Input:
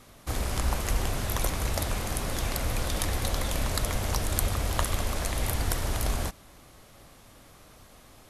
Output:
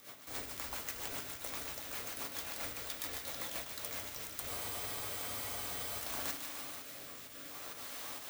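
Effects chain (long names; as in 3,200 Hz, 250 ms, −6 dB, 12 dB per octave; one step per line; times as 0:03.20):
high-pass filter 920 Hz 6 dB per octave
reversed playback
downward compressor 16 to 1, threshold −49 dBFS, peak gain reduction 27.5 dB
reversed playback
rotating-speaker cabinet horn 7.5 Hz, later 0.6 Hz, at 0:04.71
fake sidechain pumping 132 BPM, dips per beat 1, −13 dB, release 133 ms
delay with a high-pass on its return 149 ms, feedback 68%, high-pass 1,600 Hz, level −7 dB
on a send at −5.5 dB: convolution reverb RT60 0.55 s, pre-delay 4 ms
on the sum: bad sample-rate conversion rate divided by 2×, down filtered, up zero stuff
frozen spectrum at 0:04.50, 1.50 s
level +10 dB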